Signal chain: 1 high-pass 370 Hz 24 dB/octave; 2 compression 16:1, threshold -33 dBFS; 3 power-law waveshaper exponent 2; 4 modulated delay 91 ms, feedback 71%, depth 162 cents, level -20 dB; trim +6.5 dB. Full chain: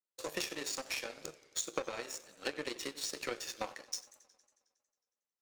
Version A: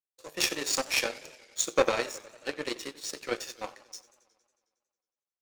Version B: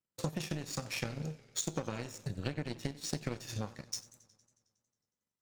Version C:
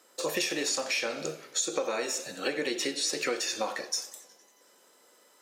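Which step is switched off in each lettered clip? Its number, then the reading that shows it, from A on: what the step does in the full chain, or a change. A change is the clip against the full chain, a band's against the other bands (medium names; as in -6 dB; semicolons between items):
2, mean gain reduction 5.5 dB; 1, 125 Hz band +22.5 dB; 3, crest factor change -9.5 dB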